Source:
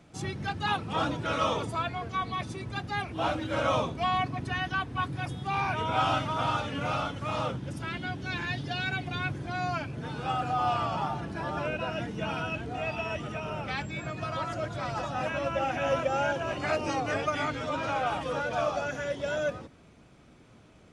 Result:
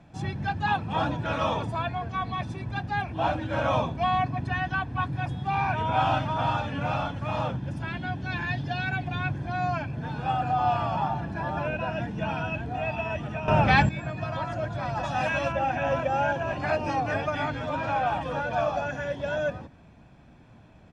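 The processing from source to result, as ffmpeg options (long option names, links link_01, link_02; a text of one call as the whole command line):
ffmpeg -i in.wav -filter_complex "[0:a]asplit=3[link_01][link_02][link_03];[link_01]afade=type=out:start_time=15.03:duration=0.02[link_04];[link_02]highshelf=frequency=2200:gain=11.5,afade=type=in:start_time=15.03:duration=0.02,afade=type=out:start_time=15.51:duration=0.02[link_05];[link_03]afade=type=in:start_time=15.51:duration=0.02[link_06];[link_04][link_05][link_06]amix=inputs=3:normalize=0,asplit=3[link_07][link_08][link_09];[link_07]atrim=end=13.482[link_10];[link_08]atrim=start=13.478:end=13.892,asetpts=PTS-STARTPTS,volume=11.5dB[link_11];[link_09]atrim=start=13.888[link_12];[link_10][link_11]acrossfade=duration=0.004:curve1=hsin:curve2=hsin[link_13];[link_13][link_12]acrossfade=duration=0.004:curve1=hsin:curve2=hsin,aemphasis=mode=reproduction:type=75kf,aecho=1:1:1.2:0.45,volume=2.5dB" out.wav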